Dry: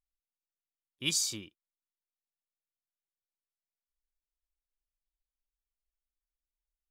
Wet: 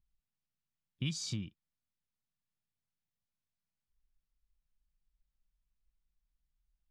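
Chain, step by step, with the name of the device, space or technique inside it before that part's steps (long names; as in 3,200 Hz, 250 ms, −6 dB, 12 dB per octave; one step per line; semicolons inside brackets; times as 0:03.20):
jukebox (low-pass filter 5,300 Hz 12 dB per octave; low shelf with overshoot 260 Hz +13.5 dB, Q 1.5; downward compressor 6 to 1, threshold −33 dBFS, peak gain reduction 11.5 dB)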